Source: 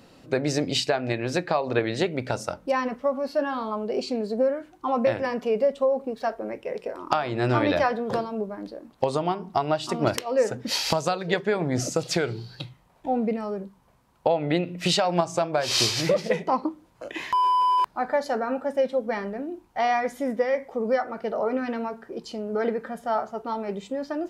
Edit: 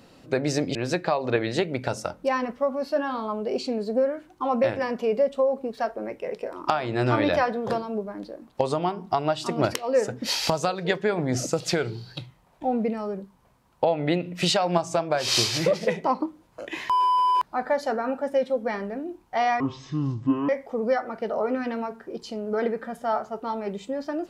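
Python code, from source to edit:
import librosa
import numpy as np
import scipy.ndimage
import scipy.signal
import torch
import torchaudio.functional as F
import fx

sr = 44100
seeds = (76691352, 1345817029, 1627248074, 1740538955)

y = fx.edit(x, sr, fx.cut(start_s=0.75, length_s=0.43),
    fx.speed_span(start_s=20.03, length_s=0.48, speed=0.54), tone=tone)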